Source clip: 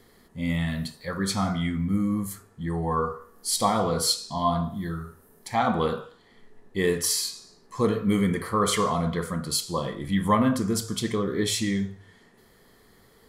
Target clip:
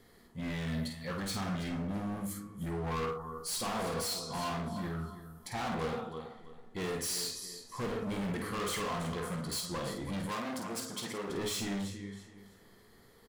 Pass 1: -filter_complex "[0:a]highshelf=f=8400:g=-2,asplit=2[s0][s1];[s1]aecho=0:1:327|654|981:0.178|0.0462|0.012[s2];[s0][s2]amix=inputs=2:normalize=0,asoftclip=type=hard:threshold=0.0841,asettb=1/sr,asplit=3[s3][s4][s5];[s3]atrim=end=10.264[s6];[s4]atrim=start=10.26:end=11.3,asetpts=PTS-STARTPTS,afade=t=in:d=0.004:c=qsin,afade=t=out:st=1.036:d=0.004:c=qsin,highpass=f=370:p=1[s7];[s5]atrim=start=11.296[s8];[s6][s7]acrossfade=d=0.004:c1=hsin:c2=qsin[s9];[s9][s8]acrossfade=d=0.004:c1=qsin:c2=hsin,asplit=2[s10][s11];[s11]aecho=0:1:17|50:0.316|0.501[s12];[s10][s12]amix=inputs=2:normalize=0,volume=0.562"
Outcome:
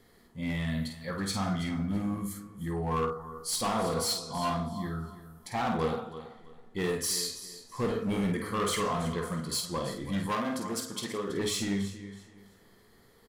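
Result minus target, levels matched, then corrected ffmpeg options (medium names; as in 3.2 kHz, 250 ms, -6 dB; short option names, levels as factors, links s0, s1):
hard clipper: distortion -7 dB
-filter_complex "[0:a]highshelf=f=8400:g=-2,asplit=2[s0][s1];[s1]aecho=0:1:327|654|981:0.178|0.0462|0.012[s2];[s0][s2]amix=inputs=2:normalize=0,asoftclip=type=hard:threshold=0.0335,asettb=1/sr,asplit=3[s3][s4][s5];[s3]atrim=end=10.264[s6];[s4]atrim=start=10.26:end=11.3,asetpts=PTS-STARTPTS,afade=t=in:d=0.004:c=qsin,afade=t=out:st=1.036:d=0.004:c=qsin,highpass=f=370:p=1[s7];[s5]atrim=start=11.296[s8];[s6][s7]acrossfade=d=0.004:c1=hsin:c2=qsin[s9];[s9][s8]acrossfade=d=0.004:c1=qsin:c2=hsin,asplit=2[s10][s11];[s11]aecho=0:1:17|50:0.316|0.501[s12];[s10][s12]amix=inputs=2:normalize=0,volume=0.562"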